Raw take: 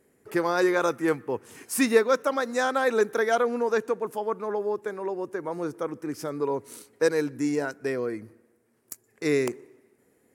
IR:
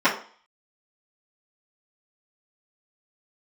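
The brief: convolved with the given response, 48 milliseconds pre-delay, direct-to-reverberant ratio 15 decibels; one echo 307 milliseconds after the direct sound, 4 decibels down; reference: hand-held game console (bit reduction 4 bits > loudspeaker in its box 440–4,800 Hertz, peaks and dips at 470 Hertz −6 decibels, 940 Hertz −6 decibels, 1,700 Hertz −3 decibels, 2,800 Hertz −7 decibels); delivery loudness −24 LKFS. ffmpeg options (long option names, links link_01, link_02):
-filter_complex "[0:a]aecho=1:1:307:0.631,asplit=2[link_01][link_02];[1:a]atrim=start_sample=2205,adelay=48[link_03];[link_02][link_03]afir=irnorm=-1:irlink=0,volume=-34.5dB[link_04];[link_01][link_04]amix=inputs=2:normalize=0,acrusher=bits=3:mix=0:aa=0.000001,highpass=440,equalizer=frequency=470:width_type=q:width=4:gain=-6,equalizer=frequency=940:width_type=q:width=4:gain=-6,equalizer=frequency=1700:width_type=q:width=4:gain=-3,equalizer=frequency=2800:width_type=q:width=4:gain=-7,lowpass=frequency=4800:width=0.5412,lowpass=frequency=4800:width=1.3066,volume=5.5dB"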